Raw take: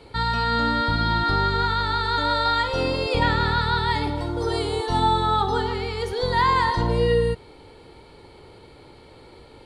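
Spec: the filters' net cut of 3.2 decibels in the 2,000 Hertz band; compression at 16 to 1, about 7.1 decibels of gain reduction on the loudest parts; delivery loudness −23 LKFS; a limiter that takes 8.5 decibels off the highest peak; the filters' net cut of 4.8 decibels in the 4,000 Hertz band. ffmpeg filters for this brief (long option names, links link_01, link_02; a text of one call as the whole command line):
ffmpeg -i in.wav -af "equalizer=frequency=2000:width_type=o:gain=-3.5,equalizer=frequency=4000:width_type=o:gain=-4.5,acompressor=threshold=-23dB:ratio=16,volume=9dB,alimiter=limit=-14.5dB:level=0:latency=1" out.wav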